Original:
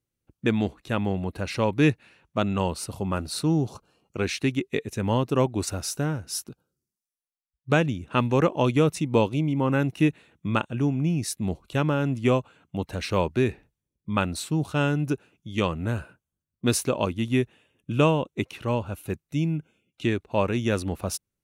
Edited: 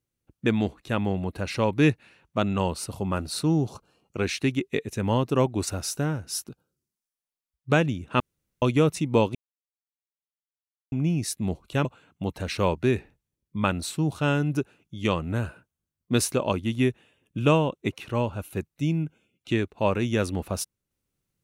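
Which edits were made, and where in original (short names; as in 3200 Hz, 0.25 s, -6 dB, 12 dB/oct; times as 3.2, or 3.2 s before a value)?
8.2–8.62 room tone
9.35–10.92 mute
11.85–12.38 cut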